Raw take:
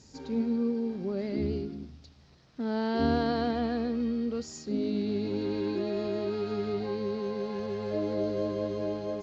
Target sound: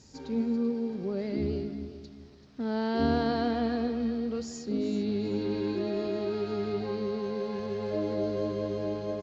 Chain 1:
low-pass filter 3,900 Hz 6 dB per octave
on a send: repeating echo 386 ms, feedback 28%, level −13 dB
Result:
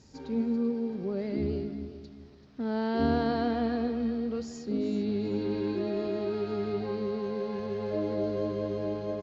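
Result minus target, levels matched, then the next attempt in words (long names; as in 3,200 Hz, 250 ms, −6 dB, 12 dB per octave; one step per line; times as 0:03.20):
4,000 Hz band −3.0 dB
on a send: repeating echo 386 ms, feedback 28%, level −13 dB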